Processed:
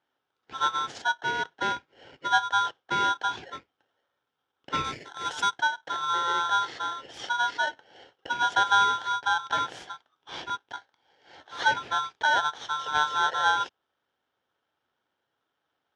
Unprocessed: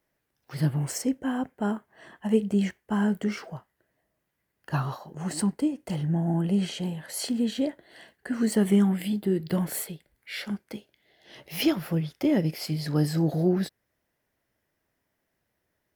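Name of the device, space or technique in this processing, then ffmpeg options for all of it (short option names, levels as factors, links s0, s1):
ring modulator pedal into a guitar cabinet: -filter_complex "[0:a]aeval=exprs='val(0)*sgn(sin(2*PI*1200*n/s))':c=same,highpass=86,equalizer=f=200:t=q:w=4:g=-7,equalizer=f=620:t=q:w=4:g=-6,equalizer=f=1100:t=q:w=4:g=-8,equalizer=f=1800:t=q:w=4:g=-3,equalizer=f=2700:t=q:w=4:g=-7,equalizer=f=4200:t=q:w=4:g=-9,lowpass=f=4300:w=0.5412,lowpass=f=4300:w=1.3066,asettb=1/sr,asplit=3[s0][s1][s2];[s0]atrim=end=4.844[s3];[s1]atrim=start=4.84:end=5.59,asetpts=PTS-STARTPTS,afade=t=in:d=0.004:c=qsin,afade=t=out:st=0.746:d=0.004:c=qsin,aemphasis=mode=production:type=50fm[s4];[s2]atrim=start=5.586[s5];[s3][s4]acrossfade=d=0.004:c1=hsin:c2=qsin[s6];[s6][s5]acrossfade=d=0.004:c1=qsin:c2=hsin,equalizer=f=2000:t=o:w=0.25:g=-6,volume=1.5"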